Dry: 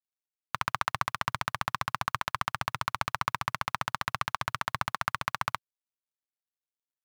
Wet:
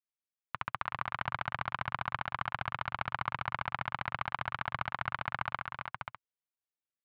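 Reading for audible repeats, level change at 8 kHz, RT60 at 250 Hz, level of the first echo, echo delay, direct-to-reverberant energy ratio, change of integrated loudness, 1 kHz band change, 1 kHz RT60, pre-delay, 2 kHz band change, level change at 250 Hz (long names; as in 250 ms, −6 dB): 3, below −30 dB, no reverb audible, −7.0 dB, 309 ms, no reverb audible, −4.5 dB, −4.5 dB, no reverb audible, no reverb audible, −3.0 dB, −3.5 dB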